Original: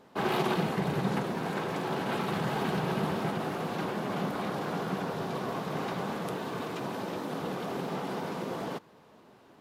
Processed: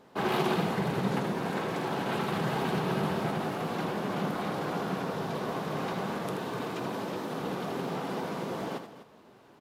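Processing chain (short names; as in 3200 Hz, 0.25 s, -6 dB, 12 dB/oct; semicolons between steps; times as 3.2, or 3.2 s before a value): tapped delay 80/250 ms -9/-14 dB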